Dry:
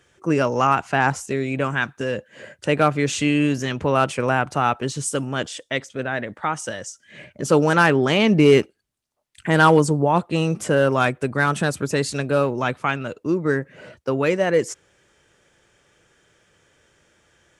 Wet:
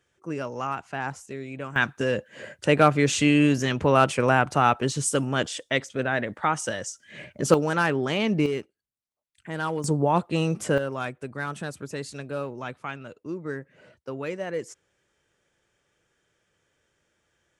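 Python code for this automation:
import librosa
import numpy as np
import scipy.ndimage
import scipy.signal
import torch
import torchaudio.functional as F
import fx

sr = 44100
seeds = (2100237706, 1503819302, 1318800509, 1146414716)

y = fx.gain(x, sr, db=fx.steps((0.0, -12.0), (1.76, 0.0), (7.54, -7.5), (8.46, -15.0), (9.84, -3.5), (10.78, -12.0)))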